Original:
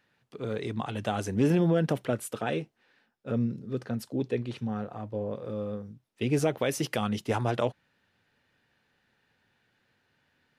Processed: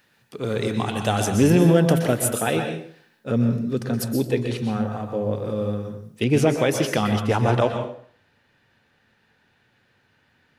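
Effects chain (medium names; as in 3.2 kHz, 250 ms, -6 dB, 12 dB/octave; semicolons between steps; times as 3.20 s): treble shelf 5.6 kHz +11 dB, from 6.24 s -3.5 dB; plate-style reverb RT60 0.54 s, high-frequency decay 0.8×, pre-delay 110 ms, DRR 5 dB; trim +7 dB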